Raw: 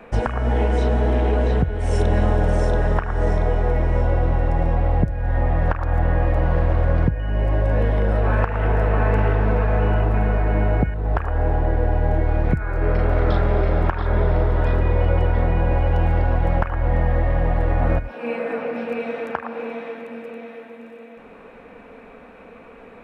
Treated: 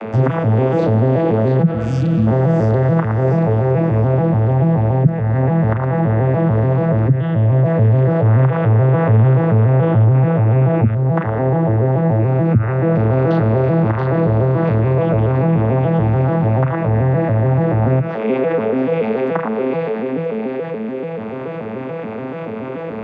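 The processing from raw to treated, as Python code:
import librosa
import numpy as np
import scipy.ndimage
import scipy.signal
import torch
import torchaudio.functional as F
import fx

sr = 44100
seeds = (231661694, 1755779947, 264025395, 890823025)

y = fx.vocoder_arp(x, sr, chord='minor triad', root=45, every_ms=144)
y = fx.spec_repair(y, sr, seeds[0], start_s=1.74, length_s=0.51, low_hz=330.0, high_hz=2200.0, source='before')
y = fx.env_flatten(y, sr, amount_pct=50)
y = y * librosa.db_to_amplitude(5.5)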